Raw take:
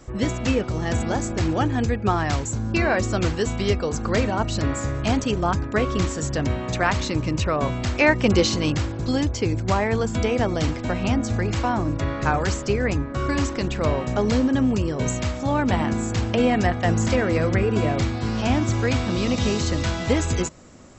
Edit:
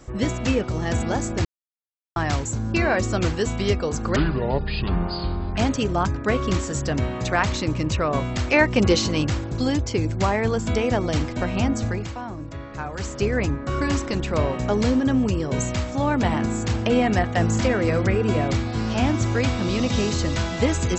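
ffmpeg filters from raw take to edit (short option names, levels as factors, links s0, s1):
-filter_complex "[0:a]asplit=7[s0][s1][s2][s3][s4][s5][s6];[s0]atrim=end=1.45,asetpts=PTS-STARTPTS,afade=t=out:st=1.446:d=0.004:c=hsin[s7];[s1]atrim=start=1.45:end=2.16,asetpts=PTS-STARTPTS,volume=0[s8];[s2]atrim=start=2.16:end=4.164,asetpts=PTS-STARTPTS,afade=t=in:d=0.004:c=hsin[s9];[s3]atrim=start=4.16:end=5.05,asetpts=PTS-STARTPTS,asetrate=27783,aresample=44100[s10];[s4]atrim=start=5.046:end=11.61,asetpts=PTS-STARTPTS,afade=t=out:st=6.244:d=0.32:silence=0.316228[s11];[s5]atrim=start=11.61:end=12.41,asetpts=PTS-STARTPTS,volume=0.316[s12];[s6]atrim=start=12.41,asetpts=PTS-STARTPTS,afade=t=in:d=0.32:silence=0.316228[s13];[s7][s8][s9]concat=n=3:v=0:a=1[s14];[s14][s10]acrossfade=d=0.004:c1=hsin:c2=hsin[s15];[s11][s12][s13]concat=n=3:v=0:a=1[s16];[s15][s16]acrossfade=d=0.004:c1=hsin:c2=hsin"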